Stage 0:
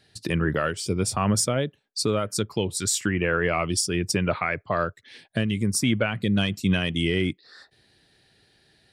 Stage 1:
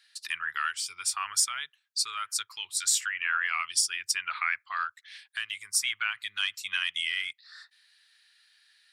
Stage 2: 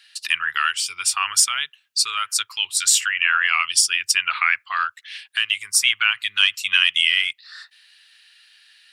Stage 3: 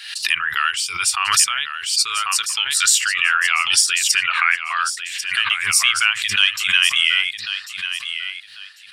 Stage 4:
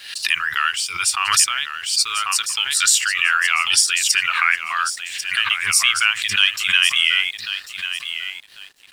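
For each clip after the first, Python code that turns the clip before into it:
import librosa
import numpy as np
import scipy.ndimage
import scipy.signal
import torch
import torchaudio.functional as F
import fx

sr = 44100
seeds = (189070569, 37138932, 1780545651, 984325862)

y1 = scipy.signal.sosfilt(scipy.signal.cheby2(4, 40, 610.0, 'highpass', fs=sr, output='sos'), x)
y2 = fx.peak_eq(y1, sr, hz=2800.0, db=9.0, octaves=0.33)
y2 = y2 * librosa.db_to_amplitude(8.5)
y3 = fx.echo_feedback(y2, sr, ms=1094, feedback_pct=24, wet_db=-10.0)
y3 = fx.pre_swell(y3, sr, db_per_s=70.0)
y3 = y3 * librosa.db_to_amplitude(1.0)
y4 = np.sign(y3) * np.maximum(np.abs(y3) - 10.0 ** (-45.0 / 20.0), 0.0)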